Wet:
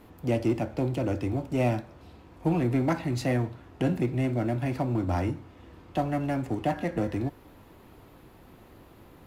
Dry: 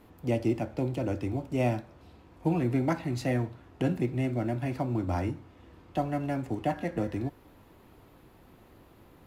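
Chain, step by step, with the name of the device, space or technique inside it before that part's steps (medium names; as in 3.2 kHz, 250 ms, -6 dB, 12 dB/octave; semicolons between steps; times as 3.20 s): parallel distortion (in parallel at -5.5 dB: hard clipper -31 dBFS, distortion -7 dB)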